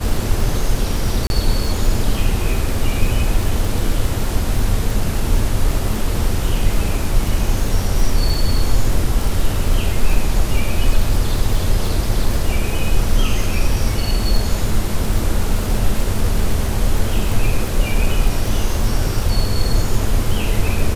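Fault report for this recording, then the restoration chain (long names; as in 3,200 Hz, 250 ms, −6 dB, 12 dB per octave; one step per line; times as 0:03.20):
surface crackle 60 per second −21 dBFS
0:01.27–0:01.30: drop-out 31 ms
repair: click removal
repair the gap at 0:01.27, 31 ms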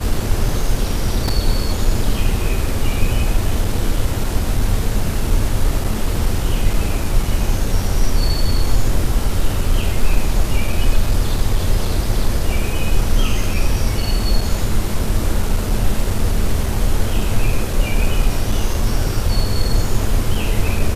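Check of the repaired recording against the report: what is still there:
none of them is left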